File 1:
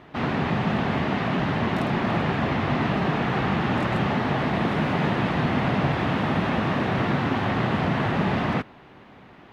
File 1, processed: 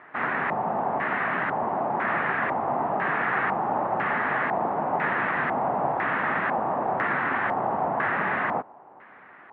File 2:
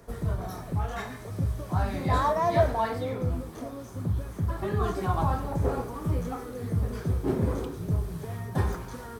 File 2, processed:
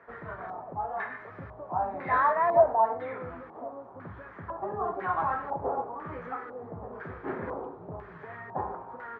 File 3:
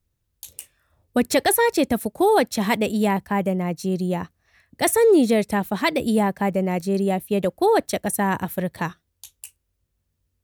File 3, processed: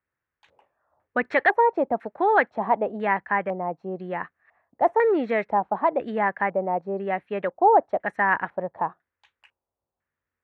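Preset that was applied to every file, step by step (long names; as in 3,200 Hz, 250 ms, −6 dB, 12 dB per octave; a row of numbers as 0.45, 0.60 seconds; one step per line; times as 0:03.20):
resonant band-pass 1,300 Hz, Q 0.66
auto-filter low-pass square 1 Hz 820–1,800 Hz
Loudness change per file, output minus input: −1.5, −1.0, −2.5 LU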